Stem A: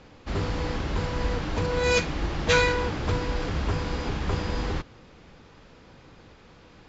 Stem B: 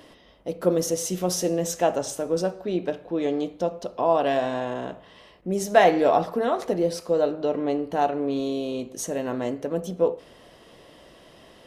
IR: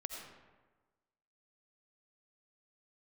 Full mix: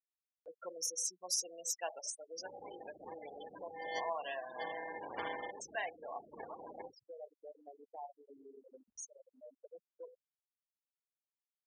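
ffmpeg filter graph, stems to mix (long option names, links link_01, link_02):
-filter_complex "[0:a]acrusher=samples=34:mix=1:aa=0.000001,asoftclip=type=tanh:threshold=-19dB,adelay=2100,volume=-2dB,asplit=2[link_01][link_02];[link_02]volume=-17dB[link_03];[1:a]tiltshelf=frequency=970:gain=-8,bandreject=frequency=1300:width=19,bandreject=frequency=142.8:width_type=h:width=4,bandreject=frequency=285.6:width_type=h:width=4,bandreject=frequency=428.4:width_type=h:width=4,bandreject=frequency=571.2:width_type=h:width=4,volume=-12.5dB,afade=type=out:start_time=5.19:duration=0.55:silence=0.473151,asplit=2[link_04][link_05];[link_05]apad=whole_len=396314[link_06];[link_01][link_06]sidechaincompress=threshold=-49dB:ratio=8:attack=16:release=373[link_07];[2:a]atrim=start_sample=2205[link_08];[link_03][link_08]afir=irnorm=-1:irlink=0[link_09];[link_07][link_04][link_09]amix=inputs=3:normalize=0,afftfilt=real='re*gte(hypot(re,im),0.02)':imag='im*gte(hypot(re,im),0.02)':win_size=1024:overlap=0.75,highpass=760,acompressor=mode=upward:threshold=-44dB:ratio=2.5"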